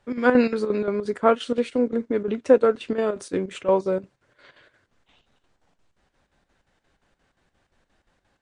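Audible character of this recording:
chopped level 5.7 Hz, depth 65%, duty 70%
MP3

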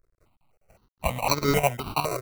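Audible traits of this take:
aliases and images of a low sample rate 1,700 Hz, jitter 0%
chopped level 4.9 Hz, depth 65%, duty 80%
a quantiser's noise floor 12 bits, dither none
notches that jump at a steady rate 3.9 Hz 840–2,800 Hz

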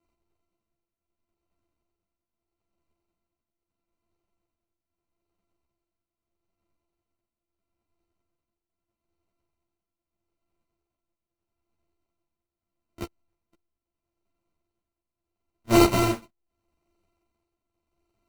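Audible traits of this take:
a buzz of ramps at a fixed pitch in blocks of 128 samples
tremolo triangle 0.78 Hz, depth 75%
aliases and images of a low sample rate 1,700 Hz, jitter 0%
a shimmering, thickened sound

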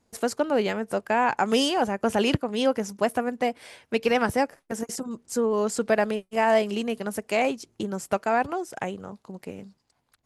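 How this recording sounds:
background noise floor −72 dBFS
spectral slope −4.0 dB per octave

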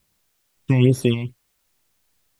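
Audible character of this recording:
phaser sweep stages 8, 2.3 Hz, lowest notch 400–2,800 Hz
sample-and-hold tremolo 3.5 Hz, depth 70%
a quantiser's noise floor 12 bits, dither triangular

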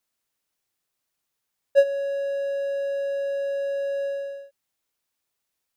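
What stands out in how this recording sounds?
background noise floor −81 dBFS
spectral slope −2.0 dB per octave

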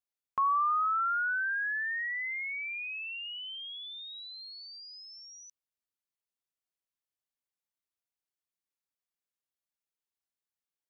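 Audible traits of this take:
background noise floor −94 dBFS
spectral slope −8.5 dB per octave

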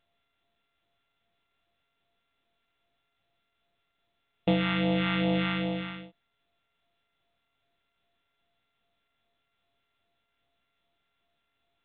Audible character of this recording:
a buzz of ramps at a fixed pitch in blocks of 64 samples
phaser sweep stages 2, 2.5 Hz, lowest notch 510–1,400 Hz
mu-law

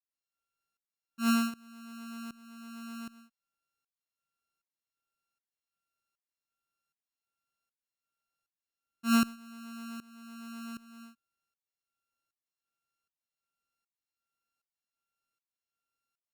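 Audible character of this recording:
a buzz of ramps at a fixed pitch in blocks of 32 samples
tremolo saw up 1.3 Hz, depth 90%
Opus

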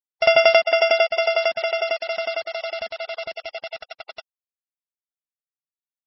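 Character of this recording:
a buzz of ramps at a fixed pitch in blocks of 16 samples
tremolo saw down 11 Hz, depth 100%
a quantiser's noise floor 6 bits, dither none
MP3

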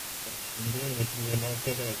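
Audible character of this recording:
a buzz of ramps at a fixed pitch in blocks of 16 samples
chopped level 3 Hz, depth 60%, duty 15%
a quantiser's noise floor 6 bits, dither triangular
AAC

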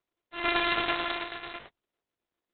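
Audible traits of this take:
a buzz of ramps at a fixed pitch in blocks of 128 samples
tremolo saw down 9.1 Hz, depth 45%
aliases and images of a low sample rate 11,000 Hz, jitter 0%
Opus

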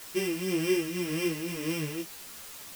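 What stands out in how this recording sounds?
a buzz of ramps at a fixed pitch in blocks of 16 samples
tremolo triangle 1.9 Hz, depth 60%
a quantiser's noise floor 8 bits, dither triangular
a shimmering, thickened sound

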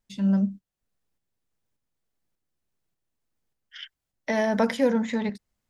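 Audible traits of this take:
tremolo saw up 1.7 Hz, depth 45%

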